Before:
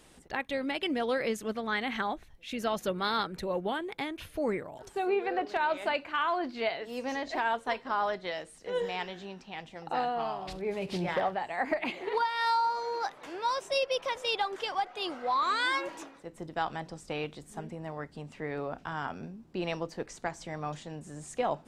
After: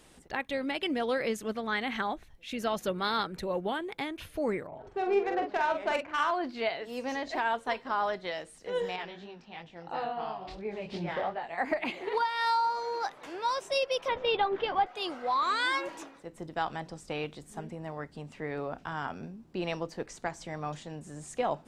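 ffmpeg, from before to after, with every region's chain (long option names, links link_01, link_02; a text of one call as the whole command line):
ffmpeg -i in.wav -filter_complex "[0:a]asettb=1/sr,asplit=3[link_01][link_02][link_03];[link_01]atrim=end=4.674[link_04];[link_02]atrim=start=4.67:end=6.31,asetpts=PTS-STARTPTS,afade=type=in:duration=0.004:curve=qsin,afade=type=out:start_time=1.636:duration=0.004:curve=qsin,adynamicsmooth=sensitivity=3:basefreq=1700,asplit=2[link_05][link_06];[link_06]adelay=45,volume=-5.5dB[link_07];[link_05][link_07]amix=inputs=2:normalize=0,atrim=end_sample=72324[link_08];[link_03]atrim=start=6.306[link_09];[link_04][link_08]acrossfade=duration=0.004:curve1=hsin:curve2=qsin[link_10];[link_10][link_09]acrossfade=duration=0.004:curve1=qsin:curve2=hsin,asettb=1/sr,asplit=3[link_11][link_12][link_13];[link_11]atrim=end=8.964[link_14];[link_12]atrim=start=8.96:end=11.58,asetpts=PTS-STARTPTS,afade=type=in:duration=0.004:curve=qsin,afade=type=out:start_time=2.616:duration=0.004:curve=qsin,lowpass=5100,flanger=delay=18:depth=6.2:speed=2.9[link_15];[link_13]atrim=start=11.576[link_16];[link_14][link_15]acrossfade=duration=0.004:curve1=hsin:curve2=qsin[link_17];[link_17][link_16]acrossfade=duration=0.004:curve1=qsin:curve2=hsin,asettb=1/sr,asplit=3[link_18][link_19][link_20];[link_18]atrim=end=14.084[link_21];[link_19]atrim=start=14.08:end=14.86,asetpts=PTS-STARTPTS,afade=type=in:duration=0.004:curve=qsin,afade=type=out:start_time=0.776:duration=0.004:curve=qsin,lowpass=frequency=3600:width=0.5412,lowpass=frequency=3600:width=1.3066,lowshelf=frequency=440:gain=12,asplit=2[link_22][link_23];[link_23]adelay=15,volume=-12dB[link_24];[link_22][link_24]amix=inputs=2:normalize=0,atrim=end_sample=34398[link_25];[link_20]atrim=start=14.856[link_26];[link_21][link_25]acrossfade=duration=0.004:curve1=hsin:curve2=qsin[link_27];[link_27][link_26]acrossfade=duration=0.004:curve1=qsin:curve2=hsin" out.wav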